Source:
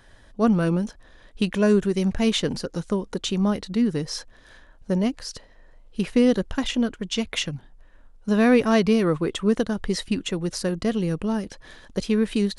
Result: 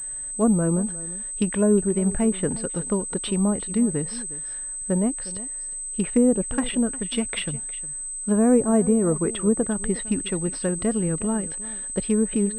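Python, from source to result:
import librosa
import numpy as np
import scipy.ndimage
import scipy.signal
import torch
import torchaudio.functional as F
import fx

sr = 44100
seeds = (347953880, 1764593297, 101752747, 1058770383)

y = fx.env_lowpass_down(x, sr, base_hz=800.0, full_db=-16.0)
y = y + 10.0 ** (-17.5 / 20.0) * np.pad(y, (int(359 * sr / 1000.0), 0))[:len(y)]
y = fx.pwm(y, sr, carrier_hz=8200.0)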